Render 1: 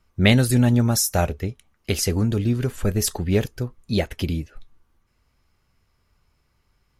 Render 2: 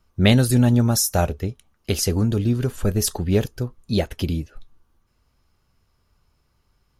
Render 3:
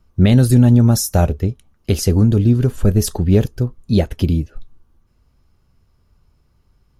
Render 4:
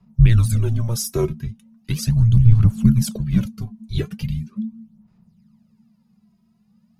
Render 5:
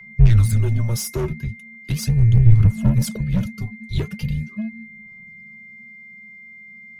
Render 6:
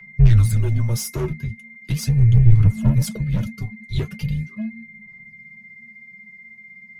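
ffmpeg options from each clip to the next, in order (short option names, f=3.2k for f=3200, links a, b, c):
-af "equalizer=f=2.1k:t=o:w=0.59:g=-5.5,bandreject=f=7.7k:w=19,volume=1dB"
-af "lowshelf=f=490:g=9,alimiter=level_in=0.5dB:limit=-1dB:release=50:level=0:latency=1,volume=-1dB"
-af "aphaser=in_gain=1:out_gain=1:delay=3.3:decay=0.67:speed=0.39:type=sinusoidal,afreqshift=-230,volume=-7.5dB"
-filter_complex "[0:a]aeval=exprs='val(0)+0.00891*sin(2*PI*2100*n/s)':c=same,acrossover=split=140[a][b];[b]asoftclip=type=tanh:threshold=-23.5dB[c];[a][c]amix=inputs=2:normalize=0,volume=1.5dB"
-af "flanger=delay=5.9:depth=2.5:regen=-38:speed=1.6:shape=triangular,volume=3dB"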